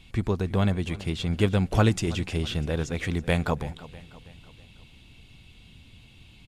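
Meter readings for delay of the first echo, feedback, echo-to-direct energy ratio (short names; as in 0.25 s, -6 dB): 0.324 s, 50%, -17.0 dB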